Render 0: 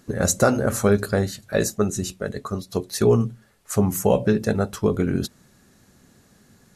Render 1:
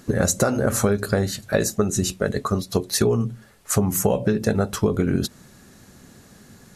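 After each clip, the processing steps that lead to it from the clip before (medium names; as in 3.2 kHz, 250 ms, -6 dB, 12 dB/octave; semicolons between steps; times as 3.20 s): compression 10:1, threshold -23 dBFS, peak gain reduction 11.5 dB; trim +7 dB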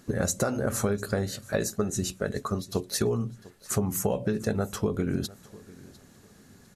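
feedback delay 700 ms, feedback 29%, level -21 dB; trim -7 dB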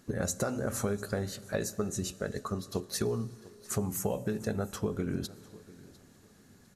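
Schroeder reverb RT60 3.1 s, combs from 28 ms, DRR 18 dB; trim -5 dB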